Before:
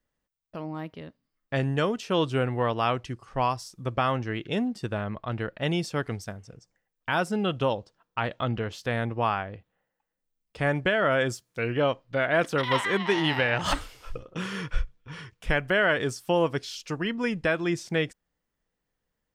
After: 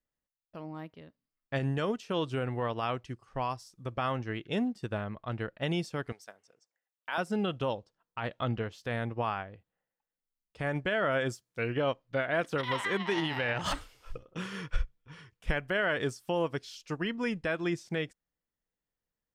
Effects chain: 6.12–7.18 HPF 520 Hz 12 dB/oct; limiter -18 dBFS, peak gain reduction 6.5 dB; upward expander 1.5:1, over -42 dBFS

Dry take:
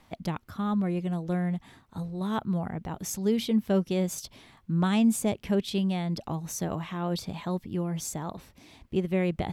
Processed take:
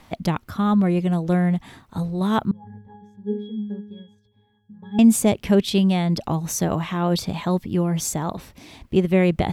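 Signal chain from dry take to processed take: 2.51–4.99 octave resonator G#, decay 0.59 s; gain +9 dB

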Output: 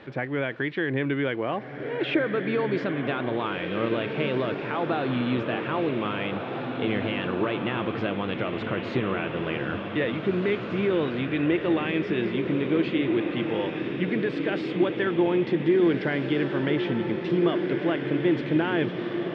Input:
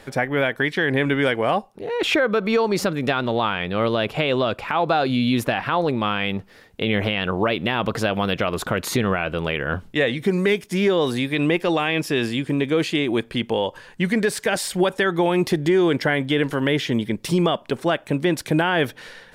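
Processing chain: zero-crossing step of -36 dBFS; speaker cabinet 100–3300 Hz, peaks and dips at 130 Hz +5 dB, 330 Hz +8 dB, 780 Hz -3 dB; diffused feedback echo 1.749 s, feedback 54%, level -5 dB; gain -8.5 dB

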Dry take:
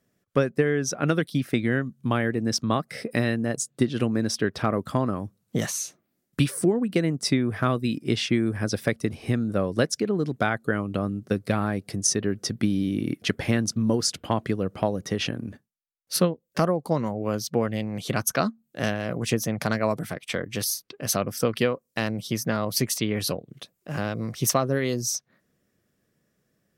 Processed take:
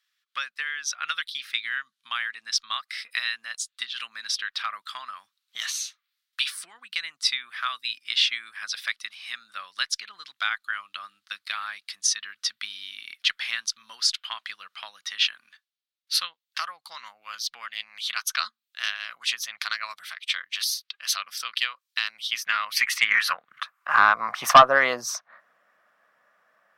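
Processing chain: 1.86–2.57 brick-wall FIR low-pass 13000 Hz; high-pass sweep 3800 Hz -> 610 Hz, 22.06–24.73; EQ curve 210 Hz 0 dB, 410 Hz -12 dB, 1200 Hz +13 dB, 7100 Hz -12 dB; added harmonics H 5 -12 dB, 8 -39 dB, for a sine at 0 dBFS; gain -1 dB

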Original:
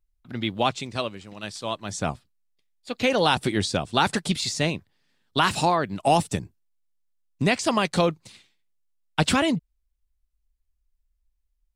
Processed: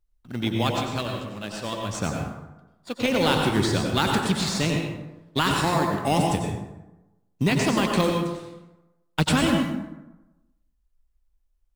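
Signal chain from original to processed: dynamic EQ 680 Hz, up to -7 dB, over -36 dBFS, Q 1.3; in parallel at -7 dB: sample-rate reducer 2900 Hz, jitter 0%; on the sum: plate-style reverb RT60 1 s, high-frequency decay 0.55×, pre-delay 80 ms, DRR 1 dB; gain -2 dB

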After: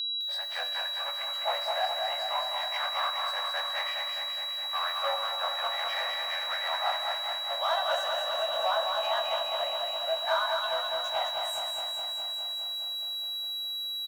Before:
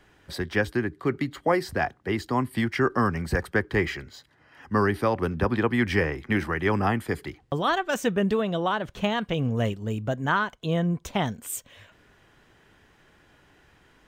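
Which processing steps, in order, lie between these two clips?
short-time reversal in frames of 43 ms; in parallel at 0 dB: compressor 6:1, threshold -39 dBFS, peak gain reduction 17 dB; on the sum: high shelf 5300 Hz -4.5 dB; overloaded stage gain 23.5 dB; tilt shelf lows +6 dB, about 1300 Hz; gate -45 dBFS, range -10 dB; echo 0.224 s -9 dB; on a send at -5.5 dB: reverb RT60 1.0 s, pre-delay 3 ms; on the sum: whine 3900 Hz -27 dBFS; steep high-pass 580 Hz 96 dB/oct; lo-fi delay 0.207 s, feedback 80%, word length 8-bit, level -5 dB; gain -2.5 dB

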